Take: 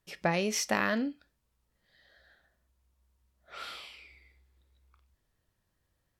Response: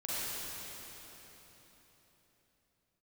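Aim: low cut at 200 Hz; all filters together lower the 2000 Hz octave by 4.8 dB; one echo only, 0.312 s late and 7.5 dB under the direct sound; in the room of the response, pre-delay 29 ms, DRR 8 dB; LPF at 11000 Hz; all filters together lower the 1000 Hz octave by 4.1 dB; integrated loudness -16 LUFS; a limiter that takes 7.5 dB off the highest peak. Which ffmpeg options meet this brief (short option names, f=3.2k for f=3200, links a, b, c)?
-filter_complex "[0:a]highpass=200,lowpass=11k,equalizer=f=1k:t=o:g=-4.5,equalizer=f=2k:t=o:g=-4.5,alimiter=limit=-22.5dB:level=0:latency=1,aecho=1:1:312:0.422,asplit=2[a][b];[1:a]atrim=start_sample=2205,adelay=29[c];[b][c]afir=irnorm=-1:irlink=0,volume=-13.5dB[d];[a][d]amix=inputs=2:normalize=0,volume=20dB"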